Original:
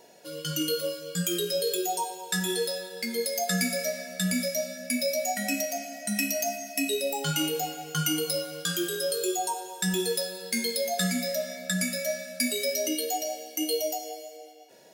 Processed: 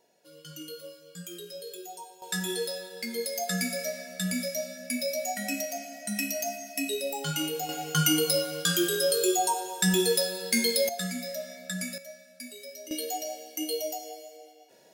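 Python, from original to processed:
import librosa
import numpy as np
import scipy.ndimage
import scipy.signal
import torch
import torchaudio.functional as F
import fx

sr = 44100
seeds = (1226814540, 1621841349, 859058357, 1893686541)

y = fx.gain(x, sr, db=fx.steps((0.0, -13.5), (2.22, -3.0), (7.69, 3.5), (10.89, -6.0), (11.98, -15.5), (12.91, -3.5)))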